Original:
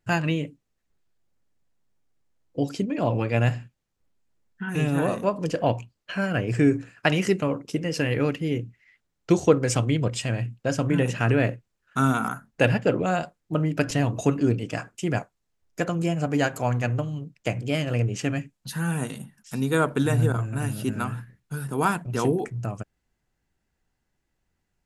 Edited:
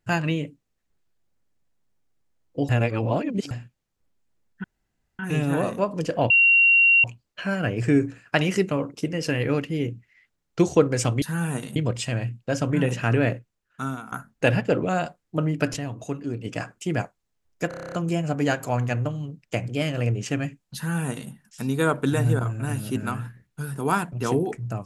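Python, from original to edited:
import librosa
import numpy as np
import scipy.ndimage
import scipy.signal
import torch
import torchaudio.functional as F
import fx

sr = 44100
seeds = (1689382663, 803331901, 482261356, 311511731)

y = fx.edit(x, sr, fx.reverse_span(start_s=2.69, length_s=0.82),
    fx.insert_room_tone(at_s=4.64, length_s=0.55),
    fx.insert_tone(at_s=5.75, length_s=0.74, hz=2750.0, db=-13.0),
    fx.fade_out_to(start_s=11.45, length_s=0.84, floor_db=-18.0),
    fx.fade_down_up(start_s=13.93, length_s=0.69, db=-8.5, fade_s=0.14, curve='exp'),
    fx.stutter(start_s=15.85, slice_s=0.03, count=9),
    fx.duplicate(start_s=18.69, length_s=0.54, to_s=9.93), tone=tone)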